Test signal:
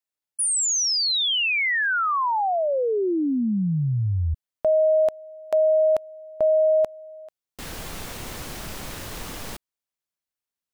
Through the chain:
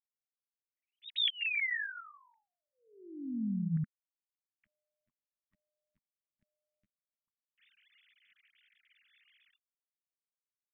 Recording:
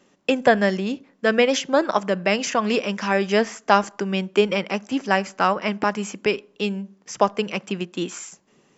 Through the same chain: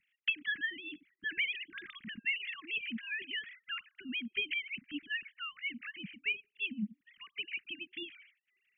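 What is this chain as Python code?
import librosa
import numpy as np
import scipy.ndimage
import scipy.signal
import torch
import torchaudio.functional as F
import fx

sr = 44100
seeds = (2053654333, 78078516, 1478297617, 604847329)

y = fx.sine_speech(x, sr)
y = scipy.signal.sosfilt(scipy.signal.ellip(3, 1.0, 70, [210.0, 2000.0], 'bandstop', fs=sr, output='sos'), y)
y = y * librosa.db_to_amplitude(-3.5)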